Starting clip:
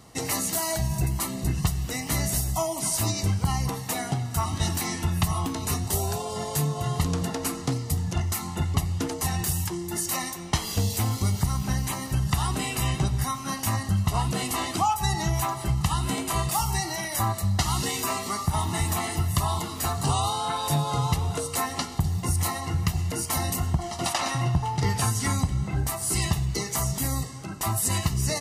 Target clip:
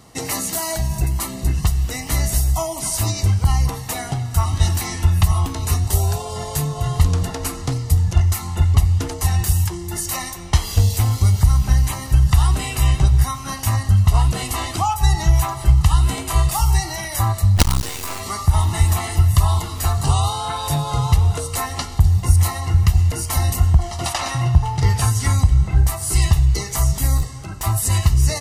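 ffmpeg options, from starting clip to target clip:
ffmpeg -i in.wav -filter_complex "[0:a]asettb=1/sr,asplit=3[link_01][link_02][link_03];[link_01]atrim=end=27.174[link_04];[link_02]atrim=start=27.17:end=27.64,asetpts=PTS-STARTPTS,afade=type=in:duration=0.004:curve=qsin,afade=type=out:start_time=0.466:duration=0.004:curve=qsin,volume=26dB,asoftclip=hard,volume=-26dB[link_05];[link_03]atrim=start=27.636[link_06];[link_04][link_05]acrossfade=duration=0.004:curve1=hsin:curve2=qsin[link_07];[link_07][link_06]acrossfade=duration=0.004:curve1=qsin:curve2=hsin,asubboost=boost=8.5:cutoff=67,asplit=3[link_08][link_09][link_10];[link_08]afade=type=out:start_time=17.56:duration=0.02[link_11];[link_09]acrusher=bits=3:dc=4:mix=0:aa=0.000001,afade=type=in:start_time=17.56:duration=0.02,afade=type=out:start_time=18.19:duration=0.02[link_12];[link_10]afade=type=in:start_time=18.19:duration=0.02[link_13];[link_11][link_12][link_13]amix=inputs=3:normalize=0,volume=3.5dB" out.wav

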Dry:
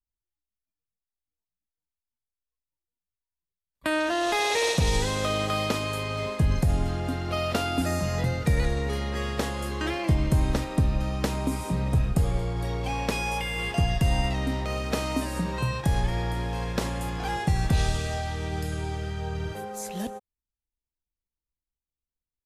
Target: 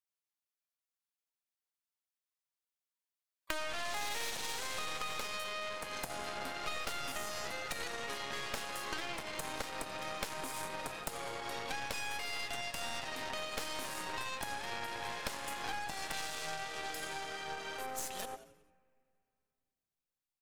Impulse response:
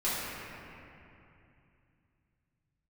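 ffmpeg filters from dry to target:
-filter_complex "[0:a]highpass=730,asplit=2[link_01][link_02];[link_02]asplit=5[link_03][link_04][link_05][link_06][link_07];[link_03]adelay=98,afreqshift=-120,volume=-16dB[link_08];[link_04]adelay=196,afreqshift=-240,volume=-21.8dB[link_09];[link_05]adelay=294,afreqshift=-360,volume=-27.7dB[link_10];[link_06]adelay=392,afreqshift=-480,volume=-33.5dB[link_11];[link_07]adelay=490,afreqshift=-600,volume=-39.4dB[link_12];[link_08][link_09][link_10][link_11][link_12]amix=inputs=5:normalize=0[link_13];[link_01][link_13]amix=inputs=2:normalize=0,aeval=exprs='0.2*(cos(1*acos(clip(val(0)/0.2,-1,1)))-cos(1*PI/2))+0.0447*(cos(2*acos(clip(val(0)/0.2,-1,1)))-cos(2*PI/2))+0.0501*(cos(8*acos(clip(val(0)/0.2,-1,1)))-cos(8*PI/2))':channel_layout=same,atempo=1.1,acompressor=threshold=-35dB:ratio=6,asplit=2[link_14][link_15];[1:a]atrim=start_sample=2205[link_16];[link_15][link_16]afir=irnorm=-1:irlink=0,volume=-33.5dB[link_17];[link_14][link_17]amix=inputs=2:normalize=0"

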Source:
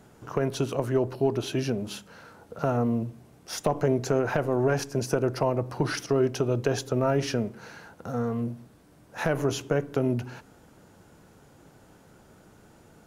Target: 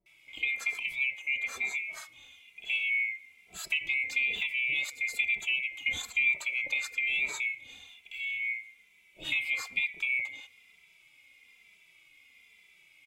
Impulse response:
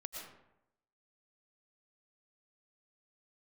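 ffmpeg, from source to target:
-filter_complex "[0:a]afftfilt=real='real(if(lt(b,920),b+92*(1-2*mod(floor(b/92),2)),b),0)':imag='imag(if(lt(b,920),b+92*(1-2*mod(floor(b/92),2)),b),0)':win_size=2048:overlap=0.75,acrossover=split=680[link_01][link_02];[link_02]adelay=60[link_03];[link_01][link_03]amix=inputs=2:normalize=0,asplit=2[link_04][link_05];[link_05]adelay=2.6,afreqshift=-1.1[link_06];[link_04][link_06]amix=inputs=2:normalize=1,volume=-2.5dB"

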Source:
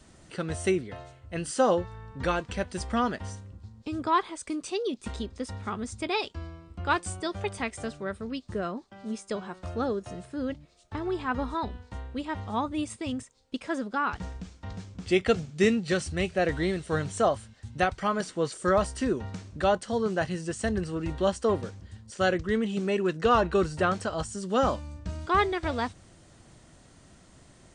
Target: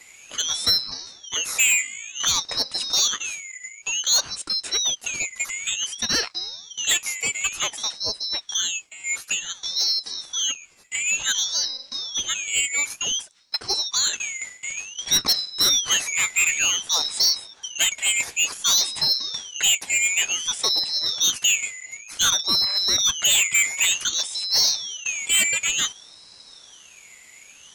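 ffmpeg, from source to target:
ffmpeg -i in.wav -af "afftfilt=real='real(if(lt(b,272),68*(eq(floor(b/68),0)*1+eq(floor(b/68),1)*2+eq(floor(b/68),2)*3+eq(floor(b/68),3)*0)+mod(b,68),b),0)':imag='imag(if(lt(b,272),68*(eq(floor(b/68),0)*1+eq(floor(b/68),1)*2+eq(floor(b/68),2)*3+eq(floor(b/68),3)*0)+mod(b,68),b),0)':win_size=2048:overlap=0.75,aeval=exprs='0.355*(cos(1*acos(clip(val(0)/0.355,-1,1)))-cos(1*PI/2))+0.00562*(cos(3*acos(clip(val(0)/0.355,-1,1)))-cos(3*PI/2))+0.158*(cos(5*acos(clip(val(0)/0.355,-1,1)))-cos(5*PI/2))+0.00282*(cos(6*acos(clip(val(0)/0.355,-1,1)))-cos(6*PI/2))':channel_layout=same,aeval=exprs='val(0)*sin(2*PI*1500*n/s+1500*0.65/0.55*sin(2*PI*0.55*n/s))':channel_layout=same" out.wav

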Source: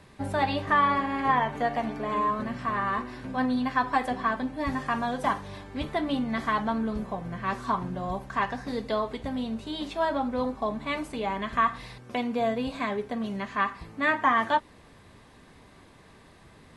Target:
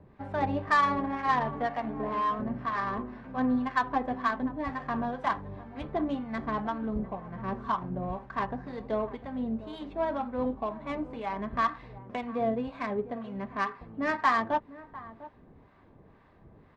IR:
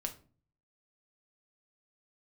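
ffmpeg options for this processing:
-filter_complex "[0:a]acrossover=split=780[link_01][link_02];[link_01]aeval=exprs='val(0)*(1-0.7/2+0.7/2*cos(2*PI*2*n/s))':channel_layout=same[link_03];[link_02]aeval=exprs='val(0)*(1-0.7/2-0.7/2*cos(2*PI*2*n/s))':channel_layout=same[link_04];[link_03][link_04]amix=inputs=2:normalize=0,asplit=2[link_05][link_06];[link_06]adelay=699.7,volume=-16dB,highshelf=frequency=4000:gain=-15.7[link_07];[link_05][link_07]amix=inputs=2:normalize=0,adynamicsmooth=sensitivity=1.5:basefreq=1500,volume=1dB"

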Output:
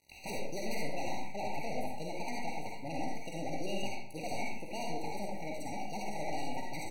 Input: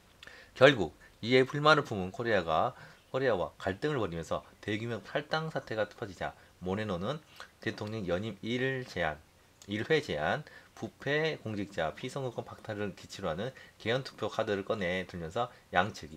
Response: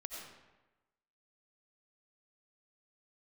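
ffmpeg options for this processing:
-filter_complex "[0:a]aeval=exprs='0.531*(cos(1*acos(clip(val(0)/0.531,-1,1)))-cos(1*PI/2))+0.00596*(cos(3*acos(clip(val(0)/0.531,-1,1)))-cos(3*PI/2))+0.0422*(cos(4*acos(clip(val(0)/0.531,-1,1)))-cos(4*PI/2))+0.188*(cos(7*acos(clip(val(0)/0.531,-1,1)))-cos(7*PI/2))+0.0106*(cos(8*acos(clip(val(0)/0.531,-1,1)))-cos(8*PI/2))':channel_layout=same,bandreject=frequency=280.8:width_type=h:width=4,bandreject=frequency=561.6:width_type=h:width=4,bandreject=frequency=842.4:width_type=h:width=4,bandreject=frequency=1123.2:width_type=h:width=4,bandreject=frequency=1404:width_type=h:width=4,bandreject=frequency=1684.8:width_type=h:width=4,bandreject=frequency=1965.6:width_type=h:width=4,bandreject=frequency=2246.4:width_type=h:width=4,bandreject=frequency=2527.2:width_type=h:width=4,bandreject=frequency=2808:width_type=h:width=4,bandreject=frequency=3088.8:width_type=h:width=4,bandreject=frequency=3369.6:width_type=h:width=4,bandreject=frequency=3650.4:width_type=h:width=4,bandreject=frequency=3931.2:width_type=h:width=4,bandreject=frequency=4212:width_type=h:width=4,bandreject=frequency=4492.8:width_type=h:width=4,bandreject=frequency=4773.6:width_type=h:width=4,bandreject=frequency=5054.4:width_type=h:width=4,bandreject=frequency=5335.2:width_type=h:width=4,bandreject=frequency=5616:width_type=h:width=4,bandreject=frequency=5896.8:width_type=h:width=4,bandreject=frequency=6177.6:width_type=h:width=4,aeval=exprs='(tanh(44.7*val(0)+0.4)-tanh(0.4))/44.7':channel_layout=same,aeval=exprs='val(0)*gte(abs(val(0)),0.00251)':channel_layout=same,asetrate=28595,aresample=44100,atempo=1.54221,asplit=2[link_01][link_02];[link_02]adelay=46,volume=-13dB[link_03];[link_01][link_03]amix=inputs=2:normalize=0[link_04];[1:a]atrim=start_sample=2205,asetrate=33075,aresample=44100[link_05];[link_04][link_05]afir=irnorm=-1:irlink=0,asetrate=103194,aresample=44100,afftfilt=real='re*eq(mod(floor(b*sr/1024/950),2),0)':imag='im*eq(mod(floor(b*sr/1024/950),2),0)':win_size=1024:overlap=0.75"

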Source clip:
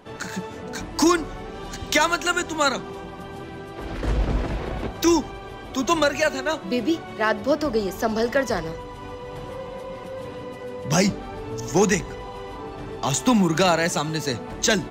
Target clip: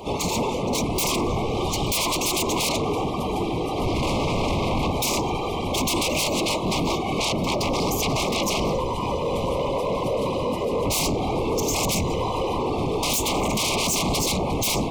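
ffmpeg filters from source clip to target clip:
ffmpeg -i in.wav -filter_complex "[0:a]bandreject=frequency=117.1:width_type=h:width=4,bandreject=frequency=234.2:width_type=h:width=4,bandreject=frequency=351.3:width_type=h:width=4,bandreject=frequency=468.4:width_type=h:width=4,bandreject=frequency=585.5:width_type=h:width=4,bandreject=frequency=702.6:width_type=h:width=4,bandreject=frequency=819.7:width_type=h:width=4,bandreject=frequency=936.8:width_type=h:width=4,bandreject=frequency=1053.9:width_type=h:width=4,bandreject=frequency=1171:width_type=h:width=4,bandreject=frequency=1288.1:width_type=h:width=4,bandreject=frequency=1405.2:width_type=h:width=4,acrossover=split=130[link_01][link_02];[link_02]acompressor=threshold=-21dB:ratio=10[link_03];[link_01][link_03]amix=inputs=2:normalize=0,acrossover=split=7600[link_04][link_05];[link_05]asoftclip=type=tanh:threshold=-31dB[link_06];[link_04][link_06]amix=inputs=2:normalize=0,afftfilt=real='hypot(re,im)*cos(2*PI*random(0))':imag='hypot(re,im)*sin(2*PI*random(1))':win_size=512:overlap=0.75,aeval=exprs='0.15*sin(PI/2*7.94*val(0)/0.15)':channel_layout=same,asuperstop=centerf=1600:order=12:qfactor=1.7,volume=-3dB" out.wav

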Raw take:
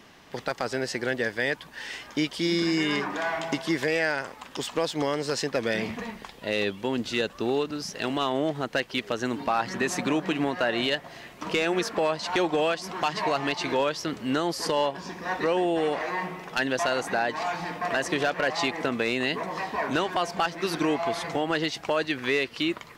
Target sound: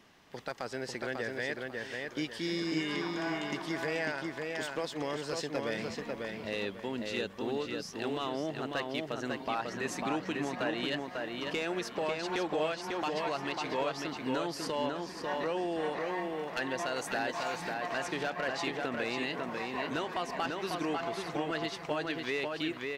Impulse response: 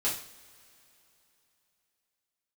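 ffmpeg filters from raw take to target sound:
-filter_complex "[0:a]asettb=1/sr,asplit=3[link_01][link_02][link_03];[link_01]atrim=end=16.964[link_04];[link_02]atrim=start=16.96:end=17.74,asetpts=PTS-STARTPTS,afade=type=in:duration=0.004:curve=qsin,afade=type=out:start_time=0.776:duration=0.004:curve=qsin,highshelf=frequency=3500:gain=8.5[link_05];[link_03]atrim=start=17.736[link_06];[link_04][link_05]acrossfade=duration=0.004:curve1=hsin:curve2=qsin[link_07];[link_07][link_06]acrossfade=duration=0.004:curve1=qsin:curve2=hsin,asplit=2[link_08][link_09];[link_09]adelay=546,lowpass=frequency=4100:poles=1,volume=-3dB,asplit=2[link_10][link_11];[link_11]adelay=546,lowpass=frequency=4100:poles=1,volume=0.33,asplit=2[link_12][link_13];[link_13]adelay=546,lowpass=frequency=4100:poles=1,volume=0.33,asplit=2[link_14][link_15];[link_15]adelay=546,lowpass=frequency=4100:poles=1,volume=0.33[link_16];[link_08][link_10][link_12][link_14][link_16]amix=inputs=5:normalize=0,volume=-9dB"

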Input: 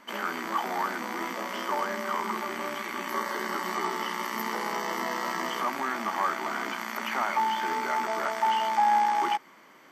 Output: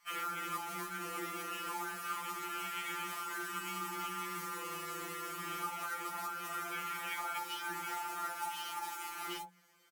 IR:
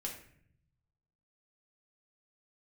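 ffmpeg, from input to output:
-filter_complex "[1:a]atrim=start_sample=2205,atrim=end_sample=3087[link_01];[0:a][link_01]afir=irnorm=-1:irlink=0,afwtdn=0.01,asettb=1/sr,asplit=3[link_02][link_03][link_04];[link_02]atrim=end=2.034[link_05];[link_03]atrim=start=2.03:end=4.09,asetpts=PTS-STARTPTS,afade=type=in:duration=0.004:curve=qsin,afade=type=out:start_time=2.056:duration=0.004:curve=qsin,highshelf=frequency=2900:gain=6.5[link_06];[link_04]atrim=start=4.086[link_07];[link_05][link_06]acrossfade=duration=0.004:curve1=hsin:curve2=qsin[link_08];[link_08][link_07]acrossfade=duration=0.004:curve1=qsin:curve2=hsin,acrusher=bits=4:mode=log:mix=0:aa=0.000001,equalizer=frequency=11000:width_type=o:width=2.5:gain=11.5,bandreject=frequency=60:width_type=h:width=6,bandreject=frequency=120:width_type=h:width=6,bandreject=frequency=180:width_type=h:width=6,acompressor=threshold=-37dB:ratio=12,acrossover=split=790[link_09][link_10];[link_09]adelay=40[link_11];[link_11][link_10]amix=inputs=2:normalize=0,afftfilt=real='re*2.83*eq(mod(b,8),0)':imag='im*2.83*eq(mod(b,8),0)':win_size=2048:overlap=0.75,volume=5dB"

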